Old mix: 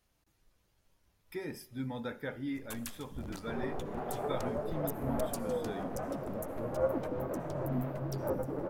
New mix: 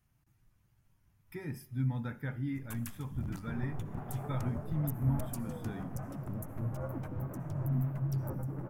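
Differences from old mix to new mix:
second sound -4.5 dB; master: add ten-band EQ 125 Hz +12 dB, 500 Hz -10 dB, 4000 Hz -9 dB, 8000 Hz -3 dB

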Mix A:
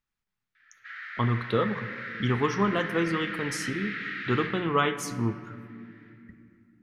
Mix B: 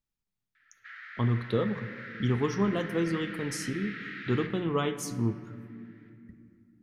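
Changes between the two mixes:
speech: add bell 1600 Hz -10.5 dB 2 oct; background: send -9.0 dB

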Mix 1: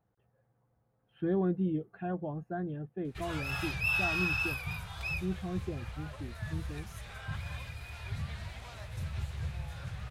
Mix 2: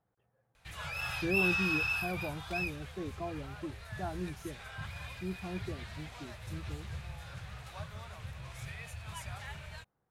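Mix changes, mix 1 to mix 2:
background: entry -2.50 s; master: add low shelf 360 Hz -5.5 dB

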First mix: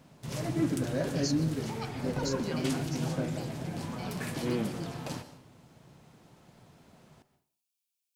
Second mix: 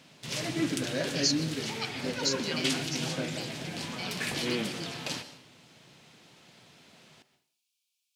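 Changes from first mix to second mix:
second sound: entry +2.15 s; master: add weighting filter D

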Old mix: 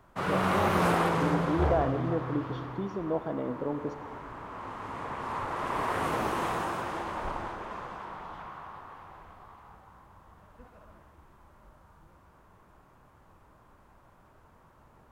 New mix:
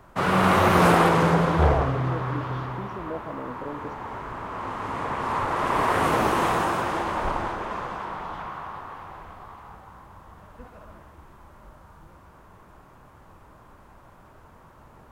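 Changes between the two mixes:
speech -3.5 dB; background +8.0 dB

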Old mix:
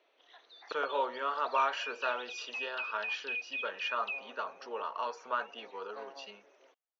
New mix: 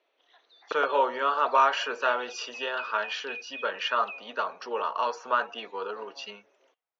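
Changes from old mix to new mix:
speech +8.0 dB; background -3.0 dB

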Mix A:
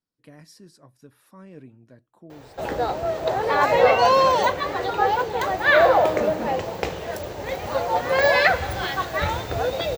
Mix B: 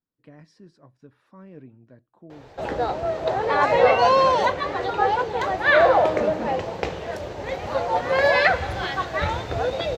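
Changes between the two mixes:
speech: add LPF 2400 Hz 6 dB/oct; master: add air absorption 69 m

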